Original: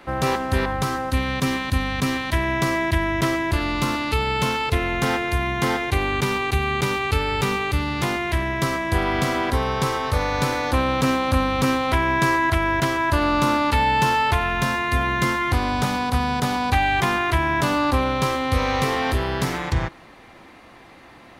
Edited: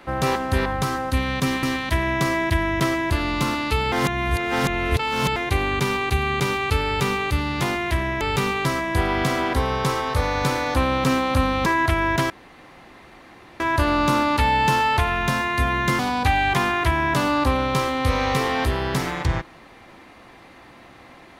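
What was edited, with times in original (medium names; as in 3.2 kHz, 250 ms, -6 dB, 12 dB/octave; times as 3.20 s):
1.63–2.04 s: delete
4.33–5.77 s: reverse
7.26–7.70 s: copy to 8.62 s
11.63–12.30 s: delete
12.94 s: insert room tone 1.30 s
15.33–16.46 s: delete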